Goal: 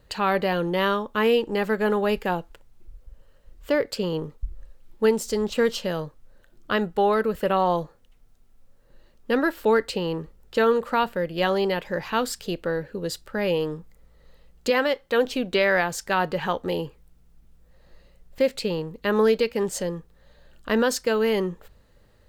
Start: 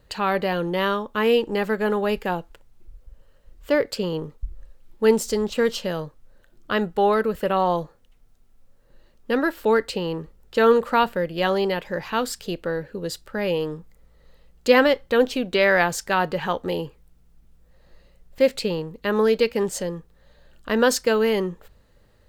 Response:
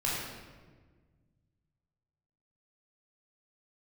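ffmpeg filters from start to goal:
-filter_complex "[0:a]asettb=1/sr,asplit=3[a][b][c];[a]atrim=end=14.704[d];[b]atrim=start=14.7:end=15.25,asetpts=PTS-STARTPTS,afade=t=in:d=0.004:c=qsin,afade=t=out:st=0.546:d=0.004:c=qsin,lowshelf=f=200:g=-11[e];[c]atrim=start=15.246[f];[d][e]acrossfade=d=0.004:c1=hsin:c2=qsin[g];[g][f]acrossfade=d=0.004:c1=qsin:c2=hsin,alimiter=limit=-11dB:level=0:latency=1:release=442"

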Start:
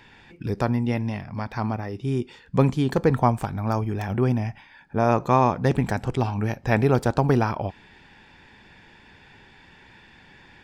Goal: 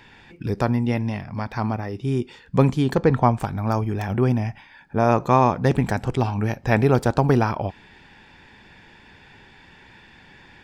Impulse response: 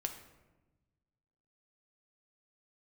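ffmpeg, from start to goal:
-filter_complex "[0:a]asettb=1/sr,asplit=3[a][b][c];[a]atrim=end=2.954[d];[b]atrim=start=2.95:end=3.4,asetpts=PTS-STARTPTS,afade=t=in:d=0.004:c=qsin,afade=t=out:st=0.446:d=0.004:c=qsin,lowpass=5.4k[e];[c]atrim=start=3.396[f];[d][e]acrossfade=d=0.004:c1=hsin:c2=qsin[g];[g][f]acrossfade=d=0.004:c1=qsin:c2=hsin,volume=2dB"

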